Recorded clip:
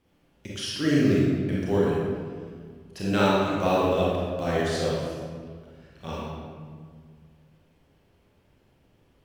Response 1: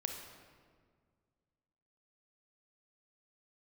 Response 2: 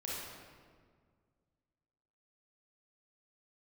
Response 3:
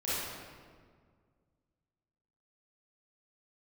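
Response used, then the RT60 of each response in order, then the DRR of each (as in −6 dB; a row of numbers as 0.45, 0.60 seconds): 2; 1.8, 1.8, 1.8 seconds; 3.5, −6.5, −12.0 decibels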